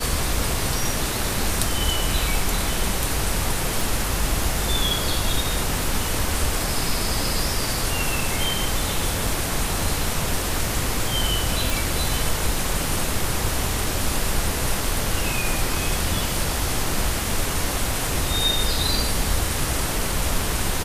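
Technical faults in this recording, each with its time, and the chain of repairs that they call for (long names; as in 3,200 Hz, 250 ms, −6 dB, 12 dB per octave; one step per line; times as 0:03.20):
0:03.81: click
0:11.70: click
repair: click removal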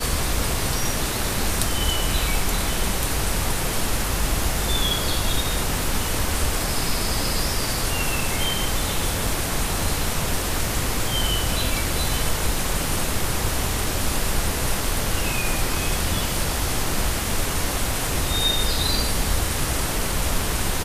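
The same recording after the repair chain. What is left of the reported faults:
none of them is left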